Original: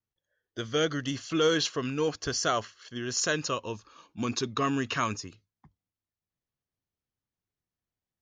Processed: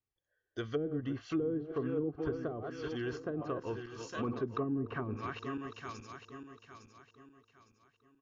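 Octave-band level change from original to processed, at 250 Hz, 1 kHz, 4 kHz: -3.5, -10.0, -19.5 dB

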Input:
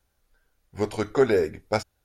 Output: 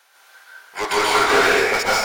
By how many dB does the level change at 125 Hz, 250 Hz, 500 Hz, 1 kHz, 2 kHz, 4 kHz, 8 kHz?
-5.5, 0.0, +3.0, +15.0, +17.5, +19.0, +18.5 dB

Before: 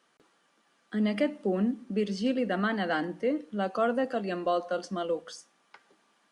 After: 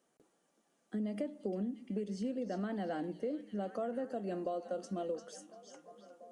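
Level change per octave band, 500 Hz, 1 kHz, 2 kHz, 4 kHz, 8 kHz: -8.5 dB, -11.5 dB, -17.5 dB, -15.5 dB, n/a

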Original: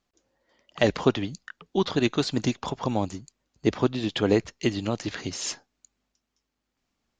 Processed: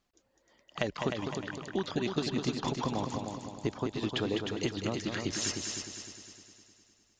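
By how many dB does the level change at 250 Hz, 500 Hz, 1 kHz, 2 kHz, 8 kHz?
-7.0, -8.5, -5.0, -5.0, -0.5 dB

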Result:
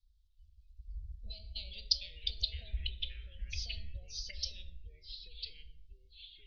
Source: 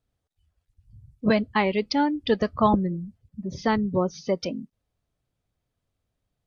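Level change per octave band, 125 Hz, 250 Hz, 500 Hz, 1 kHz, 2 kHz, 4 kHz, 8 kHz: -13.5 dB, under -40 dB, -38.5 dB, under -40 dB, -19.0 dB, +0.5 dB, n/a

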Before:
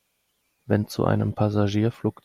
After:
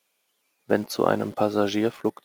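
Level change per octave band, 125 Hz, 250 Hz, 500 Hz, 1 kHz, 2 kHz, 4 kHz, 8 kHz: -12.5, -1.5, +2.5, +3.0, +3.0, +3.0, +3.5 dB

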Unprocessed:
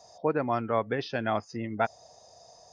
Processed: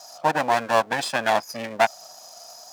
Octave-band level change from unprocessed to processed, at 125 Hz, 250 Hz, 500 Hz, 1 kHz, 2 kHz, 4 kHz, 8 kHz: -2.5 dB, -0.5 dB, +5.0 dB, +9.5 dB, +11.0 dB, +13.0 dB, n/a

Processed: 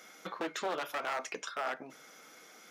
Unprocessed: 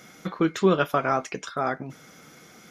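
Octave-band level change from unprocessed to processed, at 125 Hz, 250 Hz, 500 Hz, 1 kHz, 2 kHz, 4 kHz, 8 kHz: -27.5, -19.5, -13.5, -10.0, -7.0, -5.0, -4.0 dB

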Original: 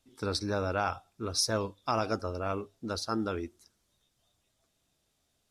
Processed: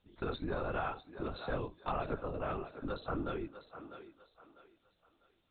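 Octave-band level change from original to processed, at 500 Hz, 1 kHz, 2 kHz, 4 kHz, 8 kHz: -5.0 dB, -5.5 dB, -5.0 dB, -16.0 dB, under -40 dB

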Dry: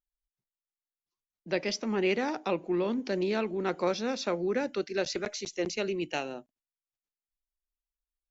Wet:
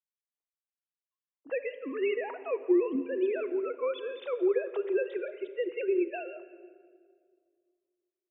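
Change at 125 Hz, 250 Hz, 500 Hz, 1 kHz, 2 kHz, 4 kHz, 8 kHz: under -25 dB, -1.0 dB, +1.5 dB, -7.5 dB, -4.5 dB, -13.5 dB, n/a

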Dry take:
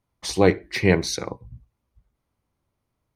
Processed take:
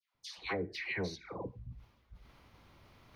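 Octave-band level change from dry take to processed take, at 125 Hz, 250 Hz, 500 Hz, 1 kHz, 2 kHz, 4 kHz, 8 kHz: -18.5, -19.5, -19.0, -14.5, -11.5, -14.5, -23.0 dB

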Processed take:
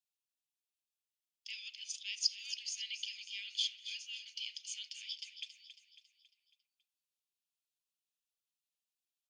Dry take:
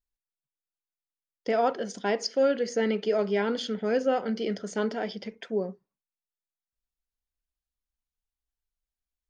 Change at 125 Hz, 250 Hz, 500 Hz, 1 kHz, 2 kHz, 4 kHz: n/a, under -40 dB, under -40 dB, under -40 dB, -11.0 dB, +2.0 dB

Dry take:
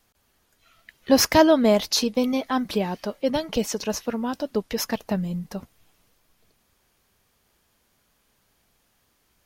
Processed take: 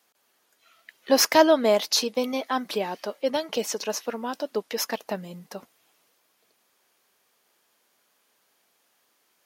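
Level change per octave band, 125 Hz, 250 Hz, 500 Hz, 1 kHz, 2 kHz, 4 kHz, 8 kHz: -12.0, -6.5, -1.0, 0.0, 0.0, 0.0, 0.0 dB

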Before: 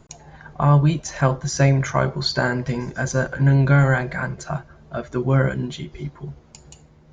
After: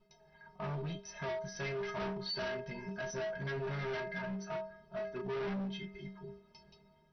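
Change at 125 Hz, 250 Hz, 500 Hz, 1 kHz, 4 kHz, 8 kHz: -25.5 dB, -19.0 dB, -13.0 dB, -18.0 dB, -14.0 dB, n/a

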